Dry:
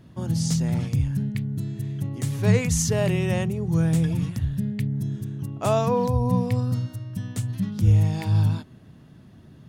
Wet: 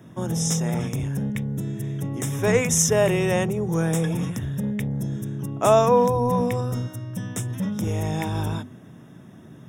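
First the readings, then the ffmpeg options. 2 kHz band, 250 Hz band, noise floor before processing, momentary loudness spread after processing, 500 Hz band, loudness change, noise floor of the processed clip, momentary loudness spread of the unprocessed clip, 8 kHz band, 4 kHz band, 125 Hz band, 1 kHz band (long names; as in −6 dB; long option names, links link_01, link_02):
+5.0 dB, 0.0 dB, −49 dBFS, 12 LU, +6.0 dB, +0.5 dB, −46 dBFS, 9 LU, +6.5 dB, +3.0 dB, −3.5 dB, +6.5 dB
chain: -filter_complex "[0:a]highpass=140,bandreject=frequency=50:width_type=h:width=6,bandreject=frequency=100:width_type=h:width=6,bandreject=frequency=150:width_type=h:width=6,bandreject=frequency=200:width_type=h:width=6,bandreject=frequency=250:width_type=h:width=6,acrossover=split=270|2300[link_01][link_02][link_03];[link_01]asoftclip=type=tanh:threshold=-31.5dB[link_04];[link_03]asuperstop=centerf=4400:order=20:qfactor=3.4[link_05];[link_04][link_02][link_05]amix=inputs=3:normalize=0,volume=6.5dB"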